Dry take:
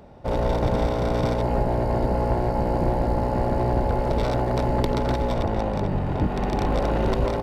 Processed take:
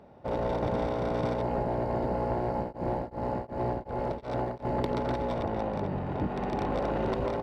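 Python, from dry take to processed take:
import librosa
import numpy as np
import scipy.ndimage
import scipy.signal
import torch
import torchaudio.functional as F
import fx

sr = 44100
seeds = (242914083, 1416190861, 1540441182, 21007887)

y = fx.highpass(x, sr, hz=150.0, slope=6)
y = fx.high_shelf(y, sr, hz=4800.0, db=-12.0)
y = fx.tremolo_abs(y, sr, hz=2.7, at=(2.55, 4.65))
y = F.gain(torch.from_numpy(y), -4.5).numpy()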